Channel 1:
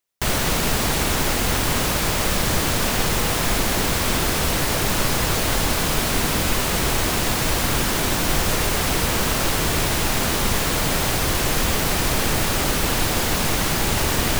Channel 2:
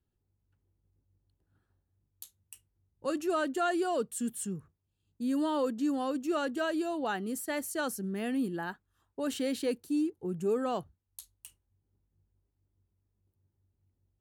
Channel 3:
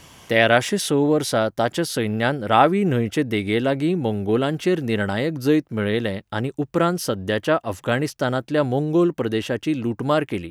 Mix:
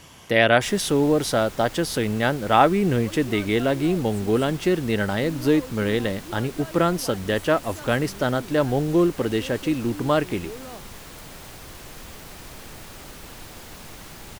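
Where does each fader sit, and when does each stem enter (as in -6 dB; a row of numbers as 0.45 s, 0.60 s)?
-20.0 dB, -8.5 dB, -1.0 dB; 0.40 s, 0.00 s, 0.00 s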